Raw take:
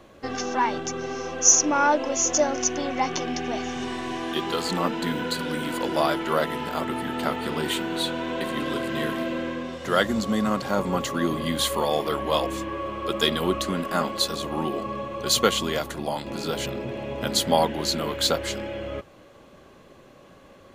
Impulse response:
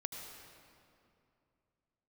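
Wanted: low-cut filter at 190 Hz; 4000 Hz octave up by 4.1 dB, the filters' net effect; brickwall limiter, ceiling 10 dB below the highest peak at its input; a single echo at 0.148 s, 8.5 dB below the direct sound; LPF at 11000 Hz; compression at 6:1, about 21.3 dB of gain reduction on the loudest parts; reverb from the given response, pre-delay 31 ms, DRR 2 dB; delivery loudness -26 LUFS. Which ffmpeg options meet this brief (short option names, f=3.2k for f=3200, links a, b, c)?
-filter_complex "[0:a]highpass=190,lowpass=11k,equalizer=f=4k:t=o:g=5,acompressor=threshold=-34dB:ratio=6,alimiter=level_in=2.5dB:limit=-24dB:level=0:latency=1,volume=-2.5dB,aecho=1:1:148:0.376,asplit=2[a][b];[1:a]atrim=start_sample=2205,adelay=31[c];[b][c]afir=irnorm=-1:irlink=0,volume=-1.5dB[d];[a][d]amix=inputs=2:normalize=0,volume=9dB"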